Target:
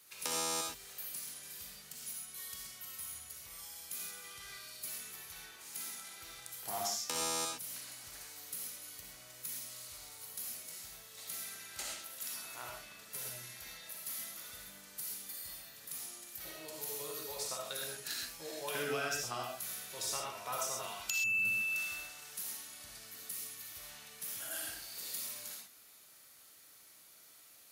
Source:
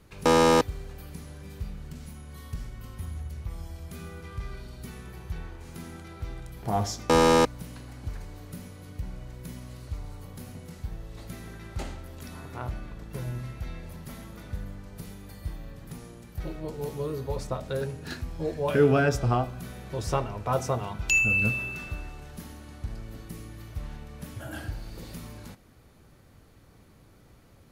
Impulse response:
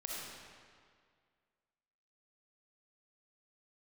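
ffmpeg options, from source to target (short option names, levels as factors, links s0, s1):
-filter_complex "[0:a]aderivative,acrossover=split=220[s0][s1];[s1]acompressor=threshold=0.00708:ratio=10[s2];[s0][s2]amix=inputs=2:normalize=0[s3];[1:a]atrim=start_sample=2205,atrim=end_sample=6174[s4];[s3][s4]afir=irnorm=-1:irlink=0,volume=3.76"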